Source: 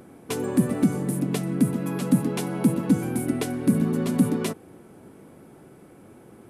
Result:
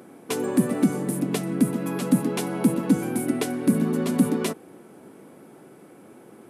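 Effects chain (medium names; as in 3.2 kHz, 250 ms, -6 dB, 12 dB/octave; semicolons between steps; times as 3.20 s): high-pass 190 Hz 12 dB/octave; trim +2 dB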